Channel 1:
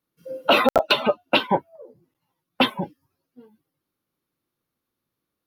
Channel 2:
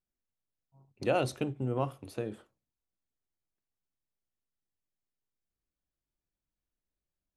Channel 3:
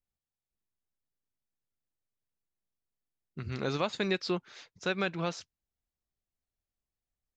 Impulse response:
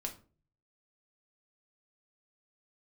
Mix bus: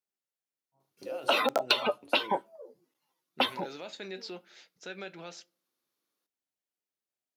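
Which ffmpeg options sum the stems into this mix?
-filter_complex "[0:a]acompressor=threshold=-19dB:ratio=6,equalizer=frequency=6200:width=0.71:gain=7.5,adelay=800,volume=-4.5dB,asplit=2[link_01][link_02];[link_02]volume=-21dB[link_03];[1:a]volume=0.5dB[link_04];[2:a]equalizer=frequency=1100:width=6.2:gain=-14,volume=-1dB,asplit=2[link_05][link_06];[link_06]volume=-17.5dB[link_07];[link_04][link_05]amix=inputs=2:normalize=0,flanger=delay=4.9:depth=6:regen=61:speed=0.38:shape=sinusoidal,alimiter=level_in=9dB:limit=-24dB:level=0:latency=1,volume=-9dB,volume=0dB[link_08];[3:a]atrim=start_sample=2205[link_09];[link_03][link_07]amix=inputs=2:normalize=0[link_10];[link_10][link_09]afir=irnorm=-1:irlink=0[link_11];[link_01][link_08][link_11]amix=inputs=3:normalize=0,highpass=310"

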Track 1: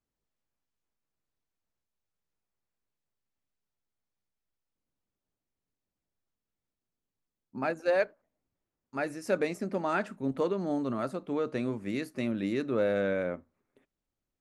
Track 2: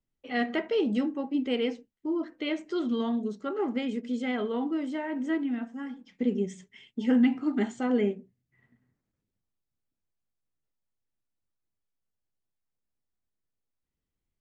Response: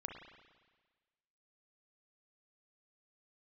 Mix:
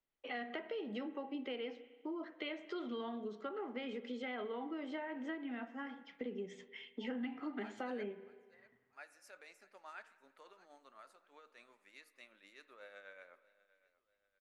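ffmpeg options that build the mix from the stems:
-filter_complex "[0:a]highpass=1100,tremolo=f=8.1:d=0.5,volume=-17dB,asplit=3[link_01][link_02][link_03];[link_02]volume=-6dB[link_04];[link_03]volume=-17.5dB[link_05];[1:a]acrossover=split=400 4400:gain=0.158 1 0.0891[link_06][link_07][link_08];[link_06][link_07][link_08]amix=inputs=3:normalize=0,acrossover=split=210[link_09][link_10];[link_10]acompressor=threshold=-38dB:ratio=6[link_11];[link_09][link_11]amix=inputs=2:normalize=0,volume=-0.5dB,asplit=2[link_12][link_13];[link_13]volume=-6.5dB[link_14];[2:a]atrim=start_sample=2205[link_15];[link_04][link_14]amix=inputs=2:normalize=0[link_16];[link_16][link_15]afir=irnorm=-1:irlink=0[link_17];[link_05]aecho=0:1:641|1282|1923|2564|3205:1|0.38|0.144|0.0549|0.0209[link_18];[link_01][link_12][link_17][link_18]amix=inputs=4:normalize=0,acompressor=threshold=-42dB:ratio=2"

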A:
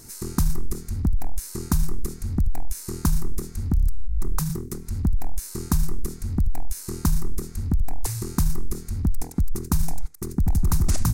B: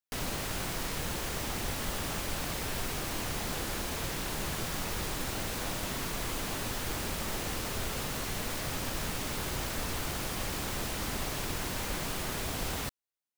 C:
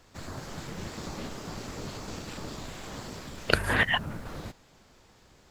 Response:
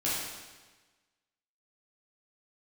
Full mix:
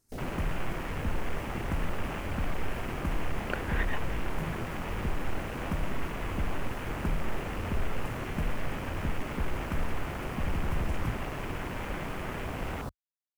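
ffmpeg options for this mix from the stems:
-filter_complex "[0:a]volume=-11.5dB[link_01];[1:a]acontrast=71,volume=-5.5dB[link_02];[2:a]volume=-11dB[link_03];[link_01][link_02][link_03]amix=inputs=3:normalize=0,afwtdn=0.0126"

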